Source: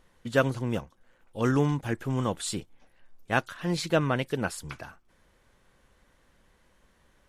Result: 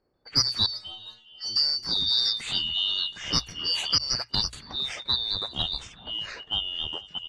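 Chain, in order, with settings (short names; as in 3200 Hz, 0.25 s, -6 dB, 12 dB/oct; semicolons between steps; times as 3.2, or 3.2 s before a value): four-band scrambler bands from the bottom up 2341; on a send: echo 0.294 s -19.5 dB; on the sum: low-pass opened by the level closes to 860 Hz, open at -24 dBFS; echoes that change speed 0.139 s, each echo -4 st, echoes 2; 0.66–1.56 metallic resonator 110 Hz, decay 0.42 s, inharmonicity 0.008; 3.98–4.53 gate -26 dBFS, range -21 dB; notches 60/120 Hz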